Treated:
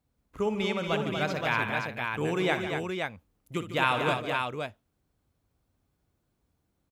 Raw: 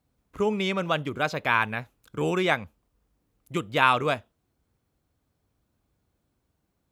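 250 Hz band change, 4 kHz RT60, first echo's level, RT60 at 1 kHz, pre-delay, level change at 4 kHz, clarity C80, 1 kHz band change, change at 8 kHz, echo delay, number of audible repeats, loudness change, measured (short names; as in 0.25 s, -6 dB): -1.5 dB, none, -11.5 dB, none, none, -1.5 dB, none, -3.5 dB, -1.5 dB, 60 ms, 4, -3.5 dB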